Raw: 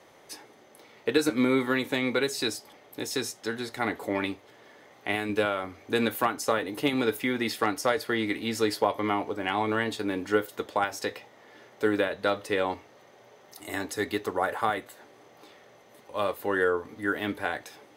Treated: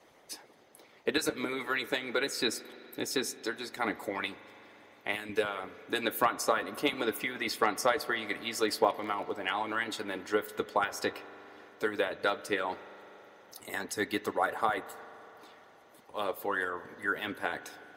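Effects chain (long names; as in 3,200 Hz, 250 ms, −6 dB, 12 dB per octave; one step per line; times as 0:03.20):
harmonic and percussive parts rebalanced harmonic −18 dB
0:08.55–0:09.30: surface crackle 82 per second → 30 per second −39 dBFS
spring reverb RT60 3.8 s, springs 40 ms, chirp 35 ms, DRR 15 dB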